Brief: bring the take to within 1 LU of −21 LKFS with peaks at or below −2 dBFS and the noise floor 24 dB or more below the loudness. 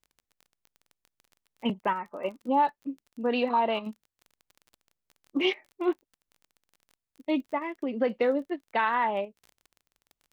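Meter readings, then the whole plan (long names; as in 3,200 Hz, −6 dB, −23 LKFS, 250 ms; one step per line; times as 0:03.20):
crackle rate 24 per second; integrated loudness −29.5 LKFS; sample peak −13.5 dBFS; target loudness −21.0 LKFS
→ click removal
level +8.5 dB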